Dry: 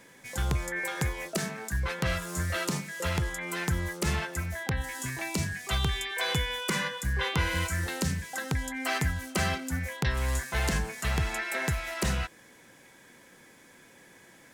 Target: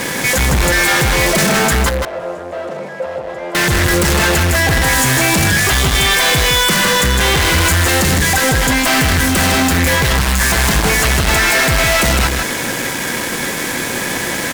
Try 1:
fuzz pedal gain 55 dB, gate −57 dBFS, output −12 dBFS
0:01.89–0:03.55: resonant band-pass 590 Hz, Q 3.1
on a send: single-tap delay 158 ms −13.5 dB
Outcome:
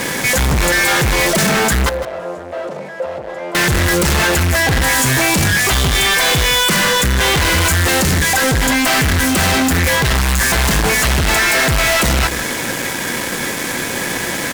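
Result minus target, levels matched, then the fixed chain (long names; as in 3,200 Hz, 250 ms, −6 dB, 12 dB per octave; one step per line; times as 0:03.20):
echo-to-direct −8.5 dB
fuzz pedal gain 55 dB, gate −57 dBFS, output −12 dBFS
0:01.89–0:03.55: resonant band-pass 590 Hz, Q 3.1
on a send: single-tap delay 158 ms −5 dB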